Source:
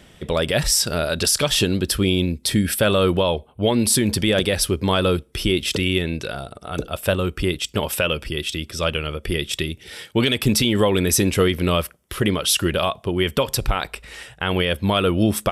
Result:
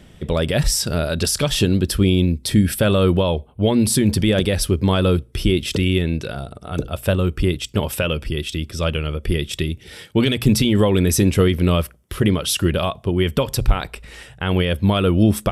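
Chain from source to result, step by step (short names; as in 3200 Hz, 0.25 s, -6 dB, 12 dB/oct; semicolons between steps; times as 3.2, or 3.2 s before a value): low shelf 310 Hz +9.5 dB; notches 60/120 Hz; gain -2.5 dB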